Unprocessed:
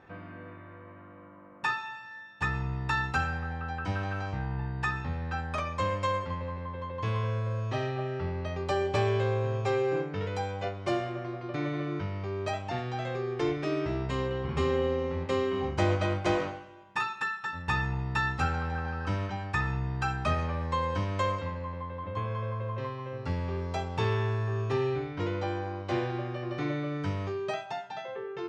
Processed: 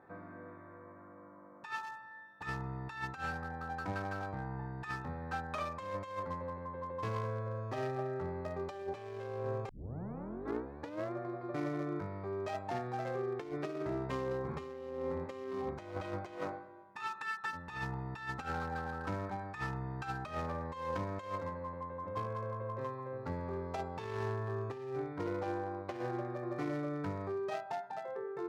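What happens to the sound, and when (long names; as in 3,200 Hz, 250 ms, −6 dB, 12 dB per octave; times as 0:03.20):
0:09.69: tape start 1.44 s
whole clip: adaptive Wiener filter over 15 samples; high-pass filter 260 Hz 6 dB per octave; compressor whose output falls as the input rises −34 dBFS, ratio −0.5; level −3 dB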